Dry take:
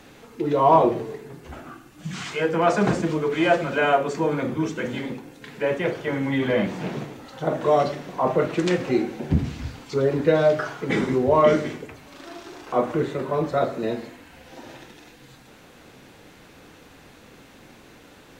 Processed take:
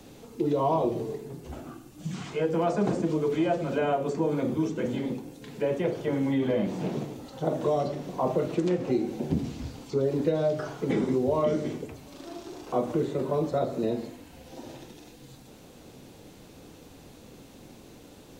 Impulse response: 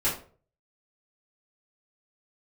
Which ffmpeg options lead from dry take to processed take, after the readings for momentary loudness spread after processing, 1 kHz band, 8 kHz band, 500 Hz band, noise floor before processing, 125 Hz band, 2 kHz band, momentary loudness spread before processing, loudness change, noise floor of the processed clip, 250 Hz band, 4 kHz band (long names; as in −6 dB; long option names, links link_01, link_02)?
16 LU, −9.0 dB, can't be measured, −5.5 dB, −49 dBFS, −3.5 dB, −13.0 dB, 20 LU, −5.5 dB, −51 dBFS, −2.5 dB, −8.5 dB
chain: -filter_complex "[0:a]equalizer=frequency=1700:width=0.77:gain=-12,acrossover=split=190|2500[link_01][link_02][link_03];[link_01]acompressor=threshold=-38dB:ratio=4[link_04];[link_02]acompressor=threshold=-25dB:ratio=4[link_05];[link_03]acompressor=threshold=-52dB:ratio=4[link_06];[link_04][link_05][link_06]amix=inputs=3:normalize=0,volume=1.5dB"